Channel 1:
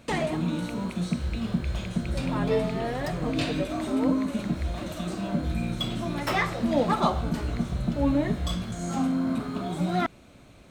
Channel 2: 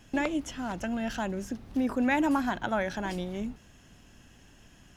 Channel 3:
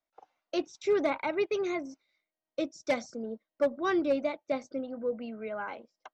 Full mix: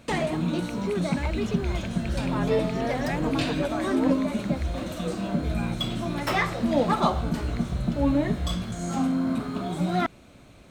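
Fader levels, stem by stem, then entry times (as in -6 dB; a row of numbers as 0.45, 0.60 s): +1.0, -6.5, -3.5 dB; 0.00, 1.00, 0.00 s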